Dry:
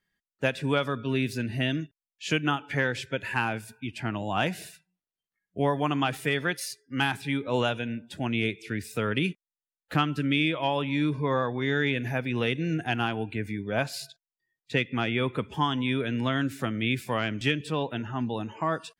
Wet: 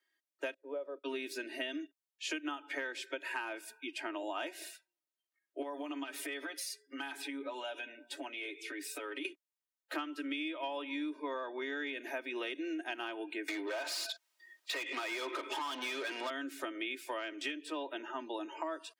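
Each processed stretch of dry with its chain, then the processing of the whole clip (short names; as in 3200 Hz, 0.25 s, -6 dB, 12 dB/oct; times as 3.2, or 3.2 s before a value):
0.54–1.04 band-pass 500 Hz, Q 4.5 + gate -47 dBFS, range -21 dB
5.62–9.25 HPF 150 Hz + compressor 5:1, threshold -36 dBFS + comb 7.1 ms, depth 70%
13.48–16.3 compressor 3:1, threshold -33 dBFS + overdrive pedal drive 29 dB, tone 5400 Hz, clips at -19 dBFS
whole clip: steep high-pass 290 Hz 72 dB/oct; comb 3.2 ms, depth 61%; compressor, threshold -33 dBFS; gain -3 dB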